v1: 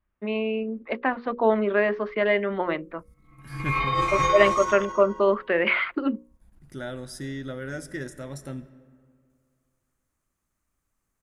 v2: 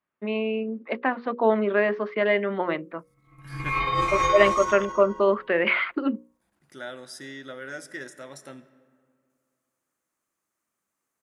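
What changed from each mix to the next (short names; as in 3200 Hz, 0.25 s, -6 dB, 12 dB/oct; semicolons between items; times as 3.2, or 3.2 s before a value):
second voice: add weighting filter A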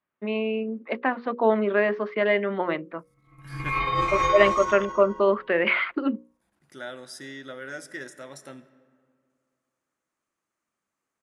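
background: add air absorption 52 m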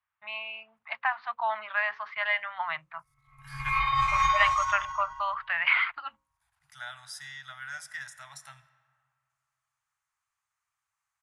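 master: add inverse Chebyshev band-stop 190–520 Hz, stop band 40 dB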